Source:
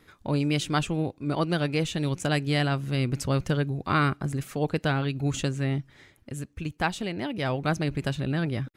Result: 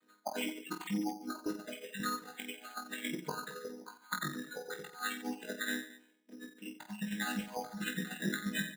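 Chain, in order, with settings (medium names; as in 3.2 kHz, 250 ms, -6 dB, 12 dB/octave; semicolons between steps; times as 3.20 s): vocoder on a held chord minor triad, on G#3; tilt EQ +3 dB/octave; spectral noise reduction 26 dB; dynamic bell 320 Hz, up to -6 dB, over -54 dBFS, Q 1.1; compressor with a negative ratio -47 dBFS, ratio -0.5; reverse bouncing-ball echo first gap 20 ms, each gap 1.4×, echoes 5; careless resampling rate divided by 8×, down filtered, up hold; trim +7 dB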